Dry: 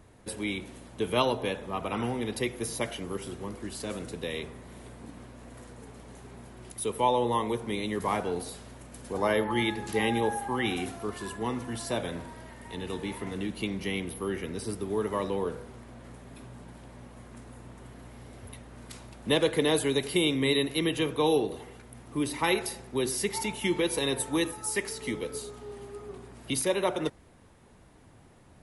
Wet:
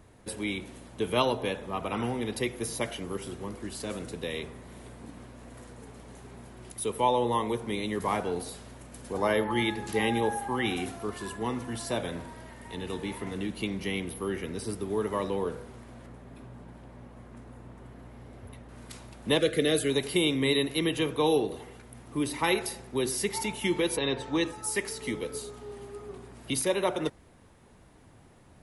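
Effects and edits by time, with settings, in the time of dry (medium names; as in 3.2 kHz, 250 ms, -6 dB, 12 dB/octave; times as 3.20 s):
16.06–18.69 s: treble shelf 2.9 kHz -10 dB
19.39–19.90 s: Butterworth band-stop 930 Hz, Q 1.8
23.96–24.61 s: low-pass 3.8 kHz -> 8.8 kHz 24 dB/octave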